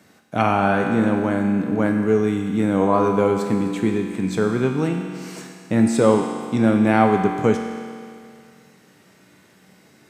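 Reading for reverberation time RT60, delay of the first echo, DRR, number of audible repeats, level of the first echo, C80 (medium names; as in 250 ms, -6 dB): 2.3 s, no echo, 2.0 dB, no echo, no echo, 5.0 dB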